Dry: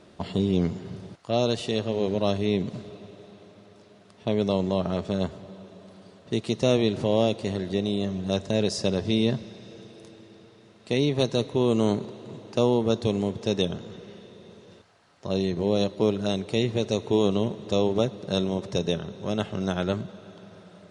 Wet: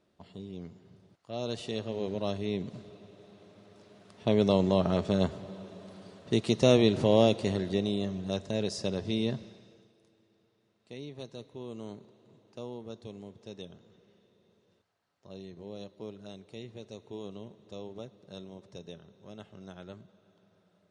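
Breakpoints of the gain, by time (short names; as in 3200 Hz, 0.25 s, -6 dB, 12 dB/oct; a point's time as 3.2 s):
1.09 s -19 dB
1.57 s -8 dB
3.07 s -8 dB
4.34 s 0 dB
7.36 s 0 dB
8.4 s -7 dB
9.45 s -7 dB
9.97 s -19.5 dB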